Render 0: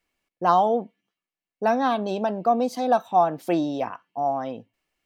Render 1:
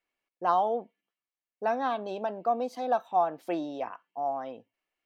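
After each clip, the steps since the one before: tone controls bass -11 dB, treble -7 dB; gain -6 dB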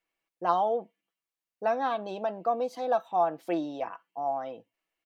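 comb 6.1 ms, depth 35%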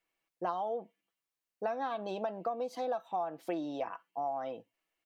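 compressor 10:1, threshold -31 dBFS, peak gain reduction 12 dB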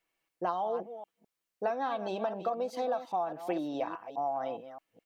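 reverse delay 0.208 s, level -11 dB; gain +2.5 dB

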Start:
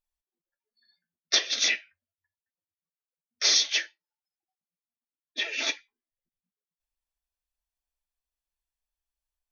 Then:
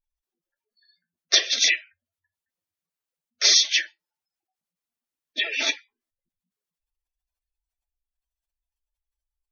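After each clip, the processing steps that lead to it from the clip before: spectral gate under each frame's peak -20 dB strong; gain +5 dB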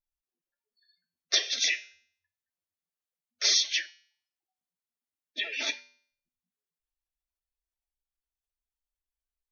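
resonator 83 Hz, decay 0.55 s, harmonics odd, mix 60%

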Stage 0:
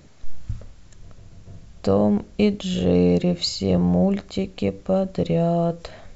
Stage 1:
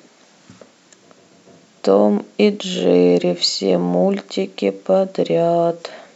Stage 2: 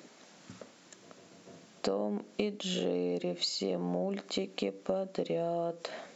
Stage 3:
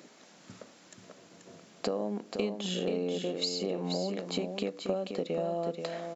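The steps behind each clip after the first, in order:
HPF 230 Hz 24 dB/oct; gain +7 dB
compressor 6:1, threshold -24 dBFS, peak gain reduction 15 dB; gain -6 dB
echo 0.483 s -6.5 dB

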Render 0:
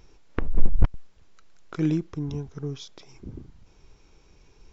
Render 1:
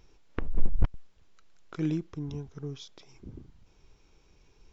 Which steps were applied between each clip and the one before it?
bell 3200 Hz +2 dB; gain -5.5 dB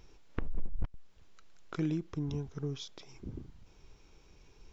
compressor 3:1, threshold -32 dBFS, peak gain reduction 14.5 dB; gain +2 dB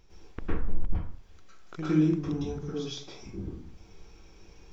plate-style reverb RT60 0.52 s, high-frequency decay 0.65×, pre-delay 95 ms, DRR -9.5 dB; gain -3.5 dB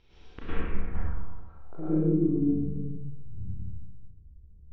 Schroeder reverb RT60 1.4 s, combs from 28 ms, DRR -4.5 dB; low-pass sweep 3500 Hz -> 110 Hz, 0.48–3.29; gain -5 dB

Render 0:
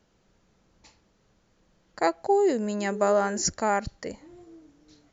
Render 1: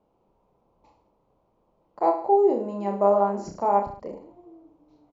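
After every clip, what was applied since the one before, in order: EQ curve 100 Hz 0 dB, 1000 Hz +12 dB, 1700 Hz -14 dB, 2400 Hz -5 dB, 6500 Hz -17 dB; on a send: reverse bouncing-ball echo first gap 30 ms, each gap 1.15×, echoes 5; on the sum: gain -8.5 dB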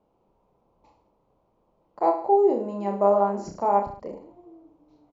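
nothing audible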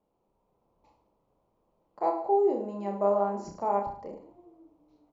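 AGC gain up to 3 dB; de-hum 47.37 Hz, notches 34; gain -7.5 dB

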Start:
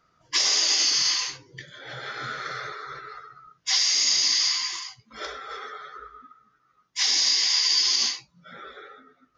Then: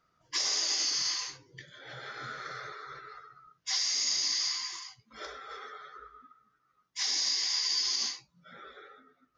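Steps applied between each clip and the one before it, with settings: dynamic EQ 2900 Hz, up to -5 dB, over -41 dBFS, Q 1.6; gain -7 dB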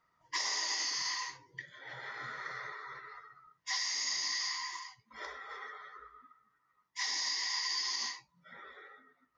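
small resonant body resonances 970/1900 Hz, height 15 dB, ringing for 20 ms; gain -6 dB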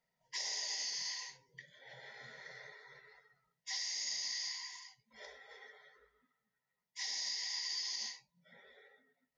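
fixed phaser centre 320 Hz, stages 6; gain -3.5 dB

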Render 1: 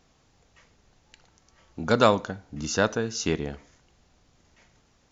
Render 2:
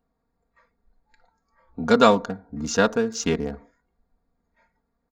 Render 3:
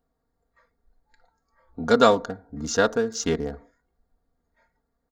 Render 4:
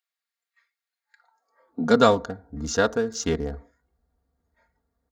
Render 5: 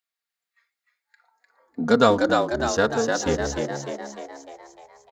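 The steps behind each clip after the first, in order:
Wiener smoothing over 15 samples; spectral noise reduction 14 dB; comb 4.3 ms, depth 68%; gain +2 dB
thirty-one-band EQ 200 Hz -8 dB, 1000 Hz -4 dB, 2500 Hz -8 dB
high-pass sweep 2500 Hz -> 60 Hz, 0.97–2.25; gain -1 dB
frequency-shifting echo 0.301 s, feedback 55%, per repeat +68 Hz, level -4 dB

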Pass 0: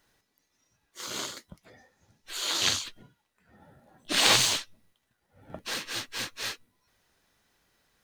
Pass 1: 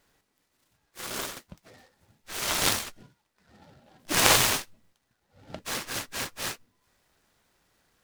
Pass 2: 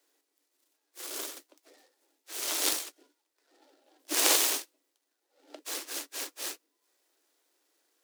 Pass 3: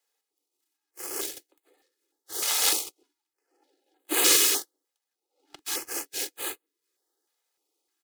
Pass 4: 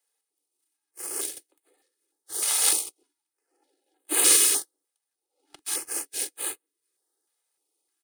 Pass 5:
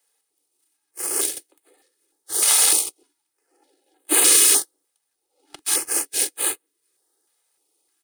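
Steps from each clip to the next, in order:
noise-modulated delay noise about 2500 Hz, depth 0.069 ms; gain +1.5 dB
steep high-pass 280 Hz 96 dB/oct; bell 1300 Hz -9.5 dB 3 oct
comb 2.4 ms, depth 69%; sample leveller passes 2; stepped notch 3.3 Hz 340–5500 Hz; gain -3 dB
bell 9300 Hz +14 dB 0.22 oct; gain -2.5 dB
maximiser +12 dB; gain -3.5 dB

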